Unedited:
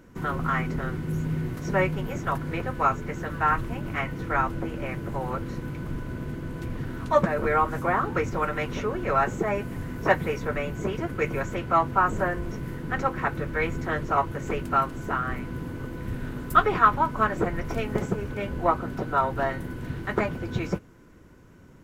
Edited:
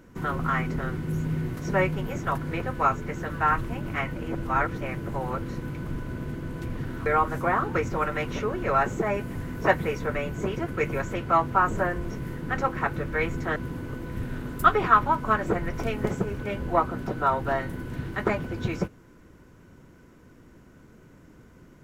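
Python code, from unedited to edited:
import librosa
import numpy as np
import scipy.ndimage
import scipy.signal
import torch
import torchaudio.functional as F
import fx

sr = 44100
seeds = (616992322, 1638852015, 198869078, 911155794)

y = fx.edit(x, sr, fx.reverse_span(start_s=4.16, length_s=0.65),
    fx.cut(start_s=7.06, length_s=0.41),
    fx.cut(start_s=13.97, length_s=1.5), tone=tone)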